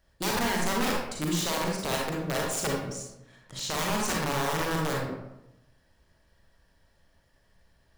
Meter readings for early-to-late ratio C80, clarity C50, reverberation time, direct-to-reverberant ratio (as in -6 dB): 4.0 dB, 0.0 dB, 0.90 s, -2.0 dB